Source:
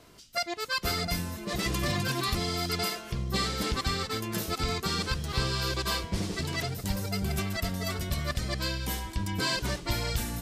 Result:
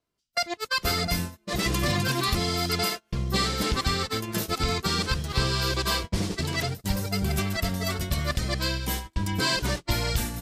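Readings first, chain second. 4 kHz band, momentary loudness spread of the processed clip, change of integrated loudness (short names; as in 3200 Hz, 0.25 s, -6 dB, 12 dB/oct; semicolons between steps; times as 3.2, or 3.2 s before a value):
+4.0 dB, 5 LU, +4.0 dB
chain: gate -33 dBFS, range -32 dB; gain +4 dB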